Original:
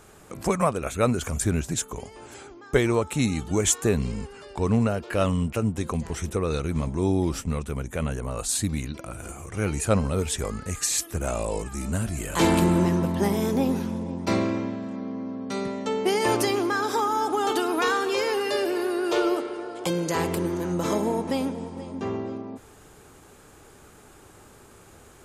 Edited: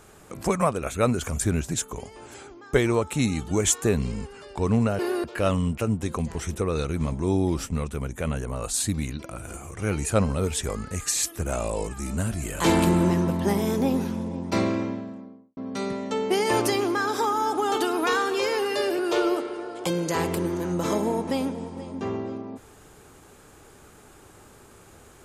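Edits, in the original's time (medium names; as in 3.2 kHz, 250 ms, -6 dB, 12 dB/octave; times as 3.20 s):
14.53–15.32 s: studio fade out
18.74–18.99 s: move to 4.99 s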